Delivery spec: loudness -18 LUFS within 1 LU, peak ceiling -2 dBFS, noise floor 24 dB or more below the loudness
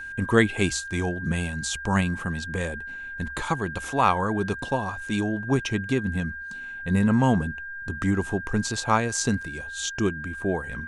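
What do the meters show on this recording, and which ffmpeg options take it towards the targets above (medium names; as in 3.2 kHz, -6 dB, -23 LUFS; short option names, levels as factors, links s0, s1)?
steady tone 1.6 kHz; tone level -34 dBFS; loudness -26.0 LUFS; peak level -5.0 dBFS; loudness target -18.0 LUFS
-> -af "bandreject=f=1600:w=30"
-af "volume=2.51,alimiter=limit=0.794:level=0:latency=1"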